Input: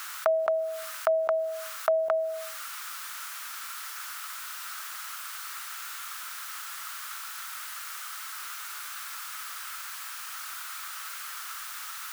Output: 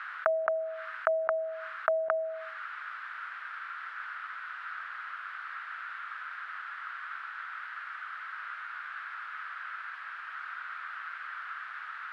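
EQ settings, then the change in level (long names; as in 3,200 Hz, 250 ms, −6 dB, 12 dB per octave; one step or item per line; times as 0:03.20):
low-pass filter 7,400 Hz 12 dB per octave
high-frequency loss of the air 460 metres
parametric band 1,600 Hz +13 dB 0.93 octaves
−4.0 dB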